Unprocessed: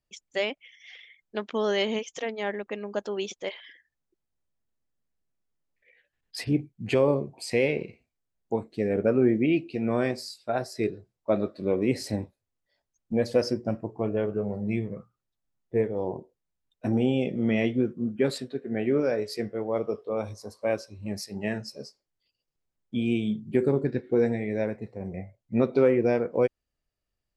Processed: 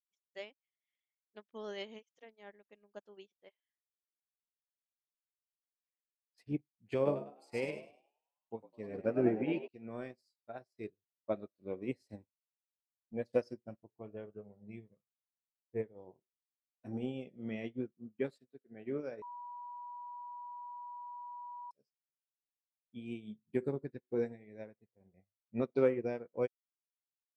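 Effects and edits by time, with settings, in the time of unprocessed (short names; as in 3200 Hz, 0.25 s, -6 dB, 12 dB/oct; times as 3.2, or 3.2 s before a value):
3.27–6.38 air absorption 130 m
6.95–9.68 frequency-shifting echo 0.102 s, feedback 61%, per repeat +68 Hz, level -6.5 dB
19.22–21.71 bleep 971 Hz -23.5 dBFS
whole clip: upward expander 2.5:1, over -44 dBFS; gain -6 dB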